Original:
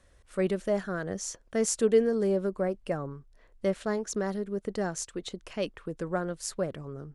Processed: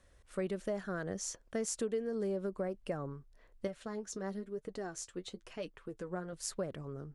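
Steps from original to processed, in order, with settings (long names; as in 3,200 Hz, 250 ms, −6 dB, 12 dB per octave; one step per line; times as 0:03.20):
downward compressor 5 to 1, threshold −29 dBFS, peak gain reduction 11.5 dB
0:03.67–0:06.33: flanger 1 Hz, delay 6.2 ms, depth 5.1 ms, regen +36%
level −3.5 dB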